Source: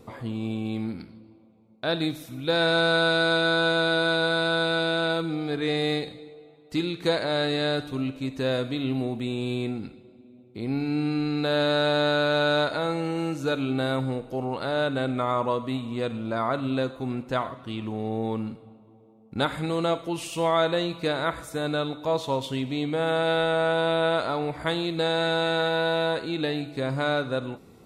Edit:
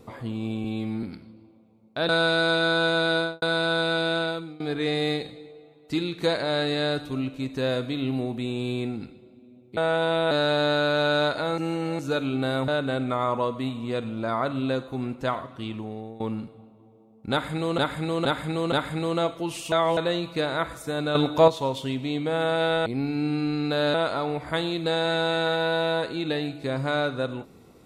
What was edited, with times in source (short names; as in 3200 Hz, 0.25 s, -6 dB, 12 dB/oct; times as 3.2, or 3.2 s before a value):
0.64–0.9 stretch 1.5×
1.96–2.91 cut
3.99–4.24 studio fade out
4.98–5.42 fade out, to -21 dB
10.59–11.67 swap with 23.53–24.07
12.94–13.35 reverse
14.04–14.76 cut
17.75–18.28 fade out, to -18.5 dB
19.39–19.86 loop, 4 plays
20.39–20.64 reverse
21.82–22.15 gain +9 dB